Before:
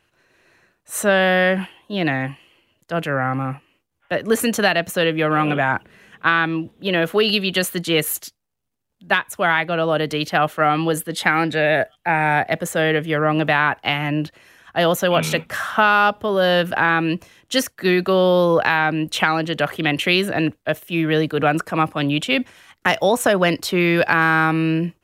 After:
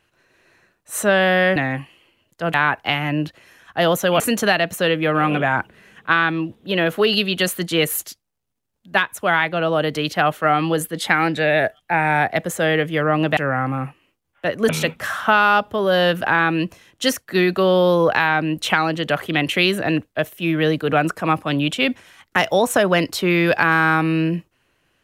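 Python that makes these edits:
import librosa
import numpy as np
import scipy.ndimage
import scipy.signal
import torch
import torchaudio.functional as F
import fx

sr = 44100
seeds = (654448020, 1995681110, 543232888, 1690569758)

y = fx.edit(x, sr, fx.cut(start_s=1.56, length_s=0.5),
    fx.swap(start_s=3.04, length_s=1.32, other_s=13.53, other_length_s=1.66), tone=tone)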